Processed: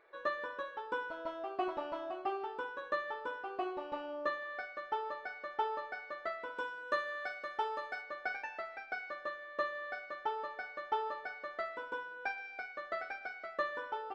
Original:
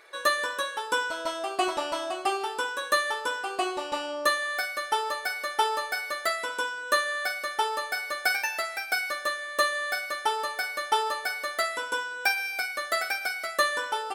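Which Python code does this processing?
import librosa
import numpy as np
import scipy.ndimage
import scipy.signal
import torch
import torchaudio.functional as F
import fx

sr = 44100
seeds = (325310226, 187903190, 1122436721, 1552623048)

y = fx.spacing_loss(x, sr, db_at_10k=fx.steps((0.0, 45.0), (6.56, 33.0), (8.01, 44.0)))
y = y * 10.0 ** (-5.5 / 20.0)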